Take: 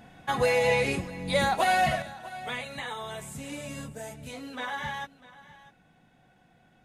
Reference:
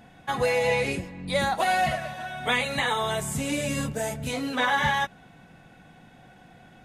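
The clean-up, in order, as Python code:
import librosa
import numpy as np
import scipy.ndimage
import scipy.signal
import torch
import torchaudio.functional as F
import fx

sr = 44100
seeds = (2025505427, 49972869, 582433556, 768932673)

y = fx.fix_echo_inverse(x, sr, delay_ms=648, level_db=-18.5)
y = fx.gain(y, sr, db=fx.steps((0.0, 0.0), (2.02, 10.5)))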